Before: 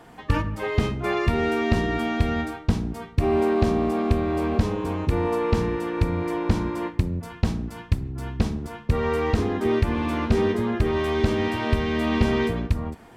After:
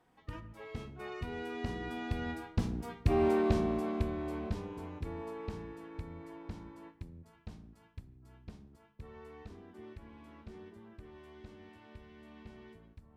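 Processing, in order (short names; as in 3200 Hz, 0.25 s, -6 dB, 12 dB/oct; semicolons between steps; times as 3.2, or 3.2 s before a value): Doppler pass-by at 3.16, 15 m/s, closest 8 m; gain -6.5 dB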